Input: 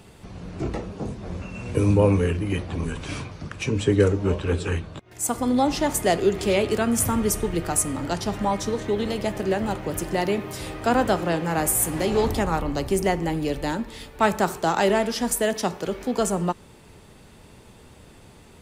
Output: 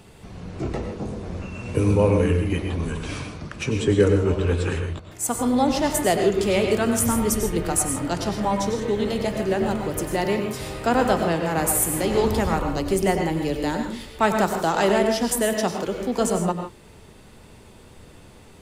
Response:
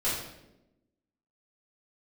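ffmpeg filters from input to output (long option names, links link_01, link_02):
-filter_complex "[0:a]asplit=2[link_01][link_02];[1:a]atrim=start_sample=2205,atrim=end_sample=3528,adelay=92[link_03];[link_02][link_03]afir=irnorm=-1:irlink=0,volume=-13dB[link_04];[link_01][link_04]amix=inputs=2:normalize=0"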